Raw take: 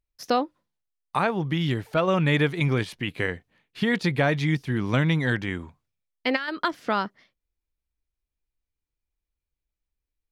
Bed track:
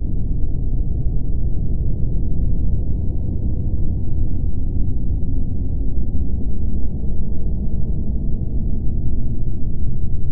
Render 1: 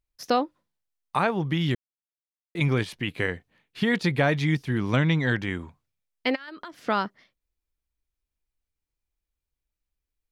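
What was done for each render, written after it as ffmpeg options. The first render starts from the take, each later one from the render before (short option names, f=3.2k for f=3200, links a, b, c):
-filter_complex "[0:a]asettb=1/sr,asplit=3[a][b][c];[a]atrim=end=4.964[d];[b]atrim=start=4.96:end=5.4,asetpts=PTS-STARTPTS,afade=t=in:d=0.004:c=qsin,afade=t=out:st=0.436:d=0.004:c=qsin,lowpass=f=7.5k:w=0.5412,lowpass=f=7.5k:w=1.3066[e];[c]atrim=start=5.396[f];[d][e]acrossfade=d=0.004:c1=hsin:c2=qsin[g];[g][f]acrossfade=d=0.004:c1=qsin:c2=hsin,asplit=3[h][i][j];[h]afade=t=out:st=6.34:d=0.02[k];[i]acompressor=threshold=-39dB:ratio=4:attack=3.2:release=140:knee=1:detection=peak,afade=t=in:st=6.34:d=0.02,afade=t=out:st=6.83:d=0.02[l];[j]afade=t=in:st=6.83:d=0.02[m];[k][l][m]amix=inputs=3:normalize=0,asplit=3[n][o][p];[n]atrim=end=1.75,asetpts=PTS-STARTPTS,afade=t=out:st=1.746:d=0.004:c=hsin[q];[o]atrim=start=1.75:end=2.55,asetpts=PTS-STARTPTS,volume=0[r];[p]atrim=start=2.55,asetpts=PTS-STARTPTS,afade=t=in:d=0.004:c=hsin[s];[q][r][s]concat=n=3:v=0:a=1"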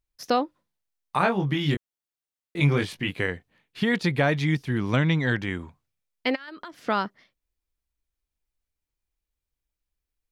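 -filter_complex "[0:a]asettb=1/sr,asplit=3[a][b][c];[a]atrim=end=1.184[d];[b]atrim=start=1.18:end=3.15,asetpts=PTS-STARTPTS,afade=t=in:d=0.004:c=qsin,afade=t=out:st=1.966:d=0.004:c=qsin,asplit=2[e][f];[f]adelay=21,volume=-3.5dB[g];[e][g]amix=inputs=2:normalize=0,atrim=end_sample=86877[h];[c]atrim=start=3.146[i];[d][h]acrossfade=d=0.004:c1=hsin:c2=qsin[j];[j][i]acrossfade=d=0.004:c1=qsin:c2=hsin"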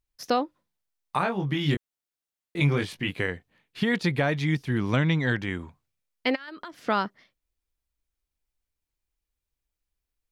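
-af "alimiter=limit=-13.5dB:level=0:latency=1:release=490"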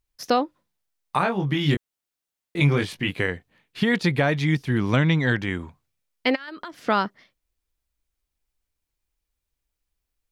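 -af "volume=3.5dB"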